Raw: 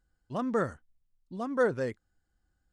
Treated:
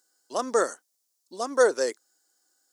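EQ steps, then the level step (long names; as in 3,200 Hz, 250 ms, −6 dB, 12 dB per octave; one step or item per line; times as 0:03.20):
high-pass filter 350 Hz 24 dB per octave
high shelf with overshoot 3,900 Hz +13 dB, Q 1.5
+7.0 dB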